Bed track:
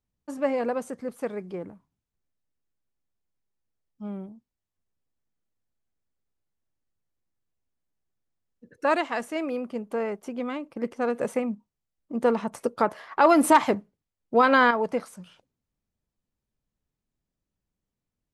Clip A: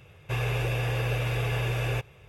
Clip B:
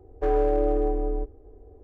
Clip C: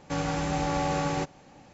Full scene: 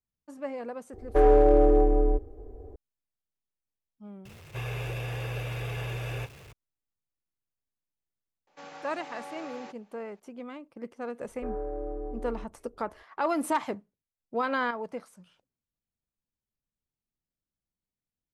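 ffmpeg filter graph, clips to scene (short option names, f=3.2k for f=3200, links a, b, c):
-filter_complex "[2:a]asplit=2[a][b];[0:a]volume=-10dB[c];[a]acontrast=73[d];[1:a]aeval=exprs='val(0)+0.5*0.0106*sgn(val(0))':c=same[e];[3:a]highpass=480,lowpass=5.2k[f];[b]lowpass=f=1.7k:w=0.5412,lowpass=f=1.7k:w=1.3066[g];[d]atrim=end=1.83,asetpts=PTS-STARTPTS,volume=-2.5dB,afade=t=in:d=0.004:c=hsin,afade=t=out:st=1.826:d=0.004:c=hsin,adelay=930[h];[e]atrim=end=2.28,asetpts=PTS-STARTPTS,volume=-7dB,afade=t=in:d=0.004:c=hsin,afade=t=out:st=2.276:d=0.004:c=hsin,adelay=187425S[i];[f]atrim=end=1.73,asetpts=PTS-STARTPTS,volume=-12.5dB,afade=t=in:d=0.004:c=hsin,afade=t=out:st=1.726:d=0.004:c=hsin,adelay=8470[j];[g]atrim=end=1.83,asetpts=PTS-STARTPTS,volume=-12.5dB,afade=t=in:d=0.004:c=hsin,afade=t=out:st=1.826:d=0.004:c=hsin,adelay=11200[k];[c][h][i][j][k]amix=inputs=5:normalize=0"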